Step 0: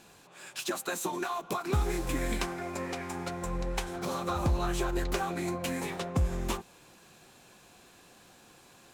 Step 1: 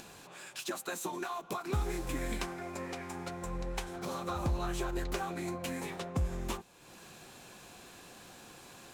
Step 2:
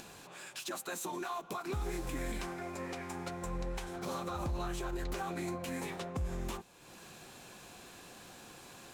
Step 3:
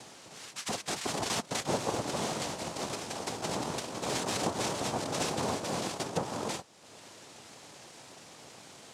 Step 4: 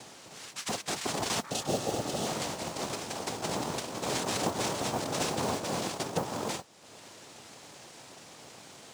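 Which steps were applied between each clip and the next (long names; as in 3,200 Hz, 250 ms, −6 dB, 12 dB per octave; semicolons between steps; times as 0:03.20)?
upward compression, threshold −38 dBFS; level −4.5 dB
brickwall limiter −28.5 dBFS, peak gain reduction 6.5 dB
in parallel at −4.5 dB: bit-depth reduction 6 bits, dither none; on the sum: cochlear-implant simulation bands 2; level +2 dB
healed spectral selection 0:01.47–0:02.24, 850–2,500 Hz before; noise that follows the level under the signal 21 dB; level +1 dB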